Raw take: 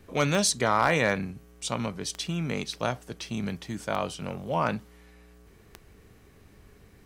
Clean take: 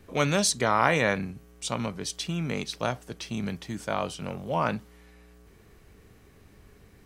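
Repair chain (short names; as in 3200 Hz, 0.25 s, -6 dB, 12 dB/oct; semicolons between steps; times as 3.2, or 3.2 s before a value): clip repair -11 dBFS; de-click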